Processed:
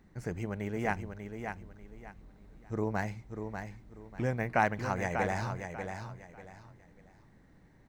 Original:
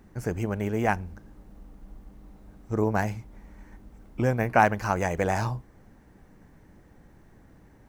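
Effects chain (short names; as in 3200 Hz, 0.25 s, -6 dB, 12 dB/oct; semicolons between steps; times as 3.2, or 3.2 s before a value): thirty-one-band EQ 160 Hz +5 dB, 2000 Hz +6 dB, 4000 Hz +6 dB, 12500 Hz -11 dB; feedback echo 0.592 s, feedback 27%, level -7 dB; gain -8 dB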